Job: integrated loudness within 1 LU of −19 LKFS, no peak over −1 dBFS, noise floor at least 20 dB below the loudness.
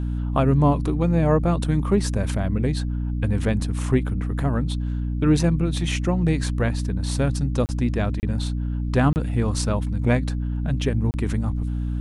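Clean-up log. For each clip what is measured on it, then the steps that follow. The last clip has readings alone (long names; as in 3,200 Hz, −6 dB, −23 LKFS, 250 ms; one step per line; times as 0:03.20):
number of dropouts 4; longest dropout 29 ms; mains hum 60 Hz; hum harmonics up to 300 Hz; level of the hum −23 dBFS; integrated loudness −23.0 LKFS; sample peak −6.5 dBFS; target loudness −19.0 LKFS
→ repair the gap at 0:07.66/0:08.20/0:09.13/0:11.11, 29 ms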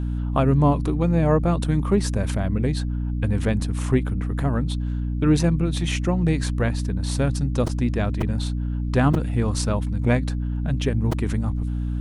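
number of dropouts 0; mains hum 60 Hz; hum harmonics up to 300 Hz; level of the hum −23 dBFS
→ hum removal 60 Hz, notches 5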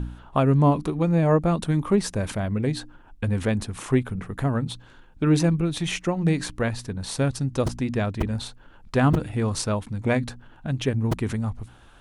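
mains hum none found; integrated loudness −24.5 LKFS; sample peak −7.5 dBFS; target loudness −19.0 LKFS
→ level +5.5 dB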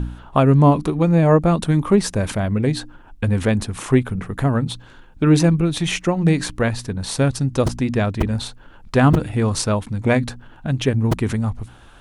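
integrated loudness −19.0 LKFS; sample peak −2.0 dBFS; background noise floor −45 dBFS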